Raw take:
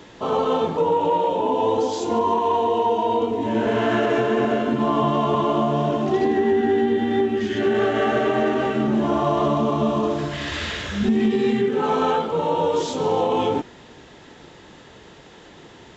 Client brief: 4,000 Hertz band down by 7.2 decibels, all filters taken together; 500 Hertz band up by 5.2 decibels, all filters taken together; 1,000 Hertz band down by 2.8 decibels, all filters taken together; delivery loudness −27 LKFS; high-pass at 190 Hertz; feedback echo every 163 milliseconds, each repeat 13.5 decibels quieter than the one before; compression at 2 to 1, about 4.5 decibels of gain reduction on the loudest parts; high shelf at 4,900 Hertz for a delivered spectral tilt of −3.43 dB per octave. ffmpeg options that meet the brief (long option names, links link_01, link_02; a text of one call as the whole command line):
ffmpeg -i in.wav -af "highpass=190,equalizer=frequency=500:width_type=o:gain=8,equalizer=frequency=1000:width_type=o:gain=-6,equalizer=frequency=4000:width_type=o:gain=-6,highshelf=frequency=4900:gain=-9,acompressor=threshold=-20dB:ratio=2,aecho=1:1:163|326:0.211|0.0444,volume=-5.5dB" out.wav